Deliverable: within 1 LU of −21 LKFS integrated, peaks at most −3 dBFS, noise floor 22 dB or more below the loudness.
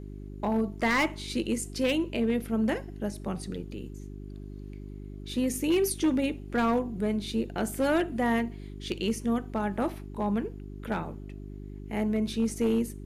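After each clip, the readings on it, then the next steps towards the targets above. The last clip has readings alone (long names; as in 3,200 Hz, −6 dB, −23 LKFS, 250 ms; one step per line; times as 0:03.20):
share of clipped samples 0.9%; peaks flattened at −19.5 dBFS; mains hum 50 Hz; hum harmonics up to 400 Hz; level of the hum −39 dBFS; integrated loudness −29.5 LKFS; sample peak −19.5 dBFS; target loudness −21.0 LKFS
→ clipped peaks rebuilt −19.5 dBFS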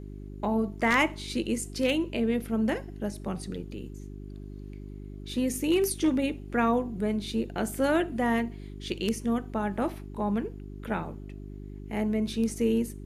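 share of clipped samples 0.0%; mains hum 50 Hz; hum harmonics up to 400 Hz; level of the hum −39 dBFS
→ hum removal 50 Hz, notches 8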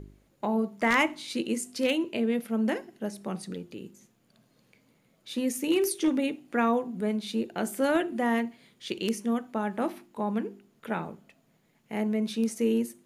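mains hum none found; integrated loudness −29.5 LKFS; sample peak −10.5 dBFS; target loudness −21.0 LKFS
→ level +8.5 dB
brickwall limiter −3 dBFS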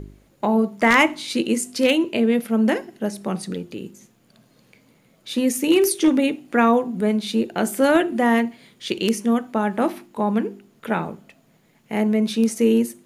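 integrated loudness −21.0 LKFS; sample peak −3.0 dBFS; background noise floor −59 dBFS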